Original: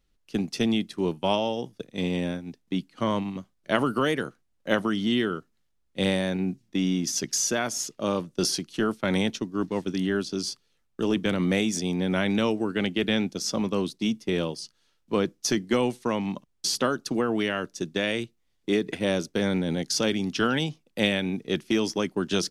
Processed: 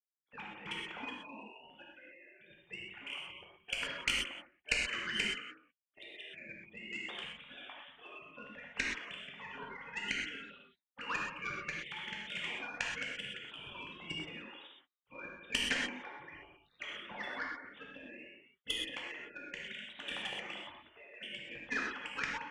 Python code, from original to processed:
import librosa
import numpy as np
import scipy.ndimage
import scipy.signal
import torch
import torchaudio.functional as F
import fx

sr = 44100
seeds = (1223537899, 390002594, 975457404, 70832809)

p1 = fx.sine_speech(x, sr)
p2 = p1 + fx.echo_single(p1, sr, ms=175, db=-8.0, dry=0)
p3 = fx.spec_gate(p2, sr, threshold_db=-30, keep='weak')
p4 = fx.cheby_harmonics(p3, sr, harmonics=(2, 3, 4), levels_db=(-9, -12, -21), full_scale_db=-31.5)
p5 = fx.rev_gated(p4, sr, seeds[0], gate_ms=150, shape='flat', drr_db=-2.0)
y = p5 * librosa.db_to_amplitude(17.0)